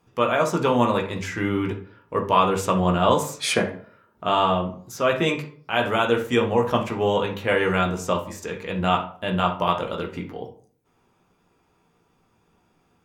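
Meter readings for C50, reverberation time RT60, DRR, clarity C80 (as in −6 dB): 10.0 dB, 0.50 s, 2.0 dB, 16.0 dB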